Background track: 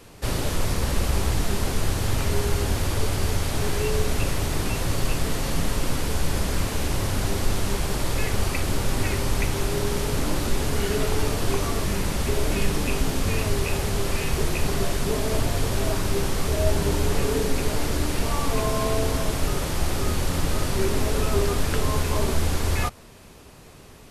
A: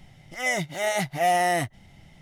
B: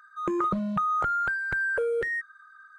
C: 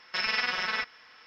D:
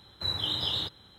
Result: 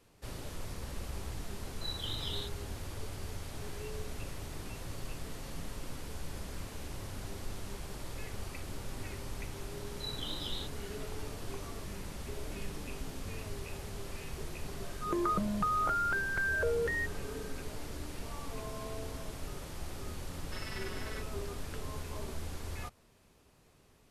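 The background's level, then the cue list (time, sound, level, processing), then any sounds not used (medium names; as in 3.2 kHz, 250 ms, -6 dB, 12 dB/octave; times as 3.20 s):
background track -17.5 dB
1.60 s: add D -10 dB
9.79 s: add D -11 dB
14.85 s: add B -5 dB
20.38 s: add C -16.5 dB + band-stop 2.4 kHz, Q 16
not used: A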